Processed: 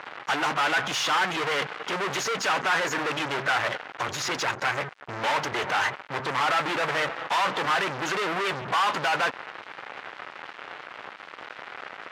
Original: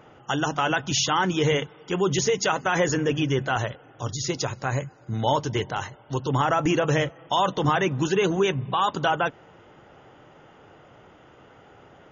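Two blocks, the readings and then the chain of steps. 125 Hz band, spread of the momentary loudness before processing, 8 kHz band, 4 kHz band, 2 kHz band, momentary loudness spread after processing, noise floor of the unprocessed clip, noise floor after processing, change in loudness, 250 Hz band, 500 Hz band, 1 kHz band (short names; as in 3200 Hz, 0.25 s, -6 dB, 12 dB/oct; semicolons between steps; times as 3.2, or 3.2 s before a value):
-13.5 dB, 8 LU, n/a, +0.5 dB, +4.0 dB, 16 LU, -52 dBFS, -45 dBFS, -1.5 dB, -9.5 dB, -6.0 dB, 0.0 dB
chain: spectral gate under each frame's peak -25 dB strong; fuzz box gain 45 dB, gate -48 dBFS; band-pass 1600 Hz, Q 0.87; gain -5.5 dB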